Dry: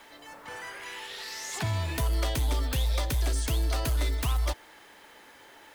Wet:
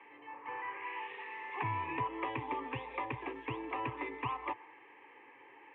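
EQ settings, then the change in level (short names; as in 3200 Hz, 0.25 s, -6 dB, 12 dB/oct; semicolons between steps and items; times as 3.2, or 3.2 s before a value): Chebyshev band-pass 120–2600 Hz, order 4; dynamic EQ 1000 Hz, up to +7 dB, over -53 dBFS, Q 2.1; fixed phaser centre 950 Hz, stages 8; -1.0 dB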